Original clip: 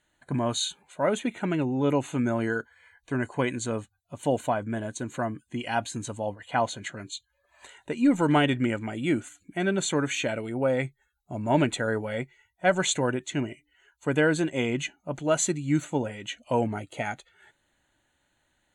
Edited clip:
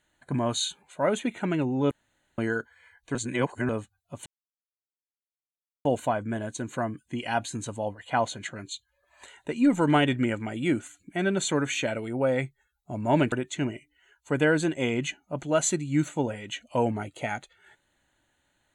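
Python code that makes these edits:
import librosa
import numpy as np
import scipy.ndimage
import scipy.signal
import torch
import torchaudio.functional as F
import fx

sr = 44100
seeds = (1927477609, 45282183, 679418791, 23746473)

y = fx.edit(x, sr, fx.room_tone_fill(start_s=1.91, length_s=0.47),
    fx.reverse_span(start_s=3.15, length_s=0.54),
    fx.insert_silence(at_s=4.26, length_s=1.59),
    fx.cut(start_s=11.73, length_s=1.35), tone=tone)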